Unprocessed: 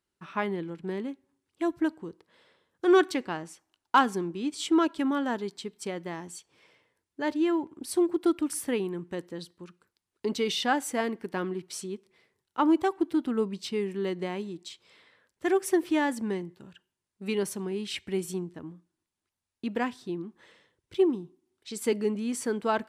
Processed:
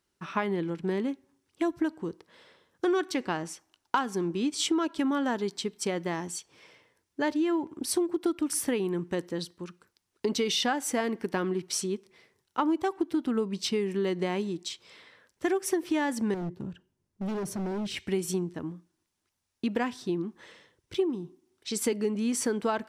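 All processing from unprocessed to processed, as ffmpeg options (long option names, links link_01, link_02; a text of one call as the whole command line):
ffmpeg -i in.wav -filter_complex "[0:a]asettb=1/sr,asplit=3[link_01][link_02][link_03];[link_01]atrim=end=16.344[link_04];[link_02]atrim=start=16.34:end=17.97,asetpts=PTS-STARTPTS,afade=type=in:duration=0.004:curve=qsin,afade=type=out:start_time=1.626:duration=0.004:curve=qsin,tiltshelf=frequency=640:gain=9,acompressor=threshold=-28dB:ratio=6:attack=3.2:release=140:knee=1:detection=peak,volume=35.5dB,asoftclip=hard,volume=-35.5dB[link_05];[link_03]atrim=start=17.966[link_06];[link_04][link_05]acrossfade=duration=0.004:curve1=hsin:curve2=qsin[link_07];[link_07][link_06]acrossfade=duration=0.004:curve1=qsin:curve2=hsin,acompressor=threshold=-30dB:ratio=6,equalizer=frequency=5700:width_type=o:width=0.33:gain=4.5,volume=5.5dB" out.wav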